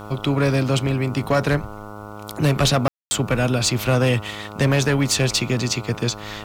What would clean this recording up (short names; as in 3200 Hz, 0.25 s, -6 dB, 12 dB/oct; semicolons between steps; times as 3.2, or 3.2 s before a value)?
de-hum 104.4 Hz, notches 14; room tone fill 2.88–3.11; expander -28 dBFS, range -21 dB